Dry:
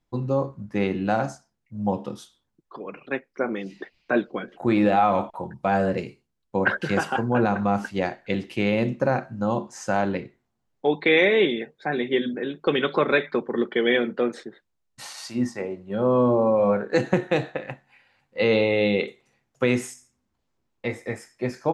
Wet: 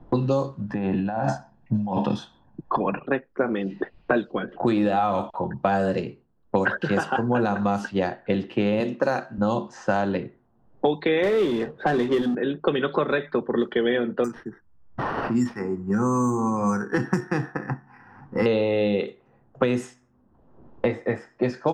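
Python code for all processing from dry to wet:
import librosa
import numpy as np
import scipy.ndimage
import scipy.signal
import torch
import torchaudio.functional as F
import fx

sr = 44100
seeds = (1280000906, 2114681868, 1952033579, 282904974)

y = fx.chain(x, sr, fx.comb(ms=1.2, depth=0.53),
    fx.over_compress(threshold_db=-33.0, ratio=-1.0), at=(0.69, 2.99))
y = fx.chain(y, sr, fx.highpass(hz=250.0, slope=12),
    fx.high_shelf(hz=2400.0, db=9.5), at=(8.8, 9.38))
y = fx.chain(y, sr, fx.bandpass_edges(low_hz=120.0, high_hz=5900.0),
    fx.high_shelf(hz=3000.0, db=-10.5),
    fx.power_curve(exponent=0.7), at=(11.23, 12.35))
y = fx.chain(y, sr, fx.fixed_phaser(hz=1400.0, stages=4),
    fx.resample_bad(factor=6, down='none', up='hold'), at=(14.24, 18.46))
y = fx.env_lowpass(y, sr, base_hz=870.0, full_db=-17.0)
y = fx.peak_eq(y, sr, hz=2200.0, db=-10.5, octaves=0.24)
y = fx.band_squash(y, sr, depth_pct=100)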